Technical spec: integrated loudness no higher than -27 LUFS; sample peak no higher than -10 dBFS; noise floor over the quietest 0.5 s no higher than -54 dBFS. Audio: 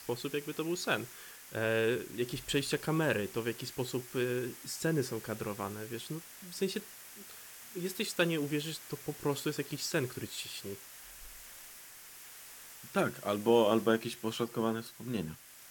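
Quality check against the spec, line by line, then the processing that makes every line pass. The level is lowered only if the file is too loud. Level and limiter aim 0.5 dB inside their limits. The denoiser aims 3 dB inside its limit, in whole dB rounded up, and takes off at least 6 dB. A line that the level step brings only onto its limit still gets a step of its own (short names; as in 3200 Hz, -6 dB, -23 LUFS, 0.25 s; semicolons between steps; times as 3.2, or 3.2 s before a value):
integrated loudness -34.5 LUFS: OK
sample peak -13.0 dBFS: OK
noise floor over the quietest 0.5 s -52 dBFS: fail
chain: denoiser 6 dB, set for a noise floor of -52 dBFS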